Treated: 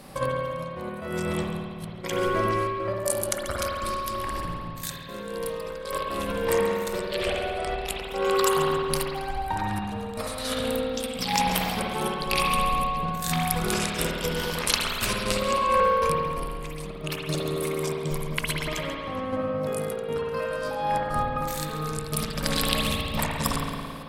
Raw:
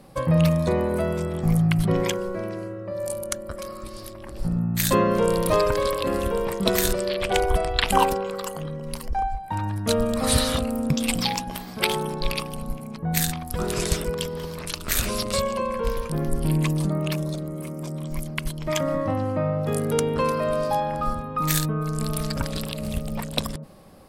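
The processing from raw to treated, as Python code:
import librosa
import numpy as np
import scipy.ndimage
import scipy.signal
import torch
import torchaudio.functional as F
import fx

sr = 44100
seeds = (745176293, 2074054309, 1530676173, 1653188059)

y = fx.over_compress(x, sr, threshold_db=-28.0, ratio=-0.5)
y = fx.tilt_shelf(y, sr, db=-4.0, hz=850.0)
y = fx.echo_feedback(y, sr, ms=137, feedback_pct=38, wet_db=-13.5)
y = fx.step_gate(y, sr, bpm=118, pattern='xxxxx.x.', floor_db=-12.0, edge_ms=4.5)
y = fx.rev_spring(y, sr, rt60_s=2.0, pass_ms=(54,), chirp_ms=30, drr_db=-2.5)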